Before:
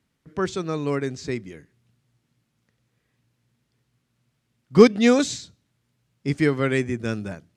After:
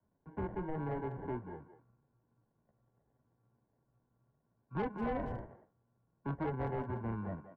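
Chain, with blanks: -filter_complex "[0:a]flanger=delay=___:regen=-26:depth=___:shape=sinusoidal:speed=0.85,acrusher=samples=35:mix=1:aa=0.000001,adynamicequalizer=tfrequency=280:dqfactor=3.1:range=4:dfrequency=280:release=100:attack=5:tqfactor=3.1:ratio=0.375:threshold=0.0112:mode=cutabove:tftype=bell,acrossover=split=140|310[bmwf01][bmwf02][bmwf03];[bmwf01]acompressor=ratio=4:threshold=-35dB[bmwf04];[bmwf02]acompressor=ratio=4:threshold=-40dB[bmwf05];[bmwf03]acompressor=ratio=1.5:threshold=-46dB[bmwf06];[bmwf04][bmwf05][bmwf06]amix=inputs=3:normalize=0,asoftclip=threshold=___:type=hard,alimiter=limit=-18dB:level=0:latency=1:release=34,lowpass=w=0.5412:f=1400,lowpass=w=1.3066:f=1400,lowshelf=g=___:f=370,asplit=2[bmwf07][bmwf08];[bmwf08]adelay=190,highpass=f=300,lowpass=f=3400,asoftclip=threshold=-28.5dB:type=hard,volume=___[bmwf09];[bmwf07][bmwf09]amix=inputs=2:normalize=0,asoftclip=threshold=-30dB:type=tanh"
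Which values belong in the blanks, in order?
9.6, 6.4, -14dB, -2.5, -11dB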